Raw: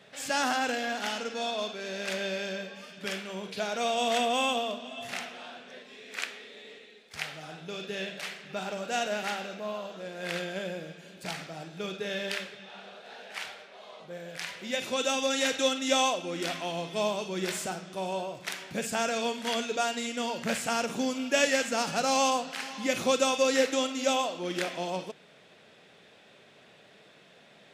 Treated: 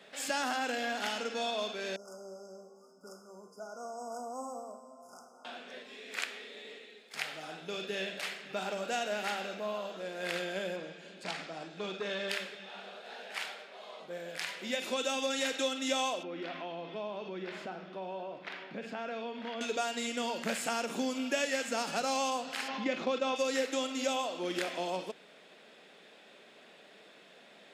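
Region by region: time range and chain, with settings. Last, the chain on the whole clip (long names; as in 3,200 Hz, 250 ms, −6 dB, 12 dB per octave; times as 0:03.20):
0:01.96–0:05.45: linear-phase brick-wall band-stop 1,500–4,800 Hz + tuned comb filter 130 Hz, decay 1.6 s, mix 80%
0:10.76–0:12.29: low-pass filter 6,900 Hz + saturating transformer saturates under 1,100 Hz
0:16.23–0:19.61: high-frequency loss of the air 300 metres + downward compressor 3 to 1, threshold −37 dBFS
0:22.68–0:23.36: noise gate −31 dBFS, range −10 dB + high-frequency loss of the air 190 metres + envelope flattener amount 50%
whole clip: high-pass filter 200 Hz 24 dB per octave; notch filter 5,900 Hz, Q 16; downward compressor 2.5 to 1, threshold −31 dBFS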